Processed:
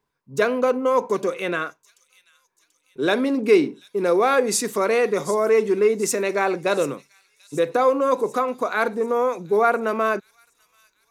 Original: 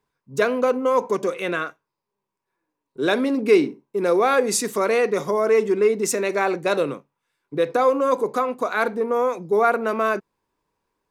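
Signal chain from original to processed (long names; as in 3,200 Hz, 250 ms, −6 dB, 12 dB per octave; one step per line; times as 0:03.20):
delay with a high-pass on its return 736 ms, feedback 52%, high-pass 5,200 Hz, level −12.5 dB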